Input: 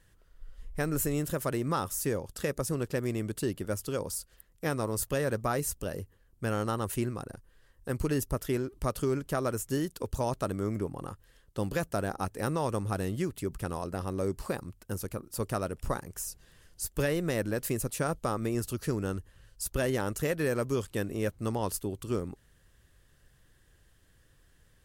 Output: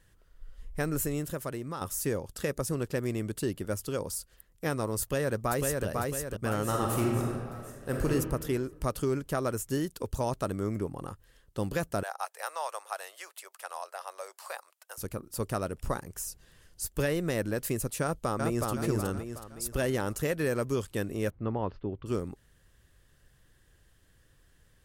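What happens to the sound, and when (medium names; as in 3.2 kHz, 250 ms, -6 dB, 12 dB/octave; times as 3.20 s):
0.86–1.81 s: fade out, to -9 dB
5.01–5.86 s: echo throw 500 ms, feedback 50%, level -2.5 dB
6.65–8.10 s: reverb throw, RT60 1.5 s, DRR -1 dB
12.03–14.98 s: steep high-pass 620 Hz
18.02–18.69 s: echo throw 370 ms, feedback 45%, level -2 dB
21.30–22.06 s: Gaussian low-pass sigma 3.3 samples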